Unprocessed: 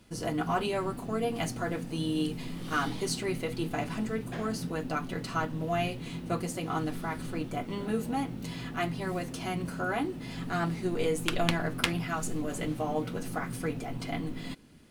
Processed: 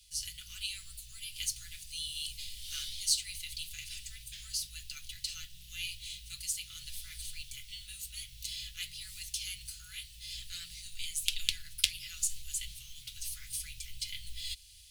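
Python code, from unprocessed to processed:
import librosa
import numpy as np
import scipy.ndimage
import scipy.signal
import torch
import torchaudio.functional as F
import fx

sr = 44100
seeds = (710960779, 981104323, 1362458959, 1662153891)

p1 = fx.low_shelf(x, sr, hz=67.0, db=-10.5)
p2 = fx.rider(p1, sr, range_db=10, speed_s=0.5)
p3 = p1 + F.gain(torch.from_numpy(p2), -3.0).numpy()
p4 = scipy.signal.sosfilt(scipy.signal.cheby2(4, 80, [260.0, 800.0], 'bandstop', fs=sr, output='sos'), p3)
y = F.gain(torch.from_numpy(p4), 2.5).numpy()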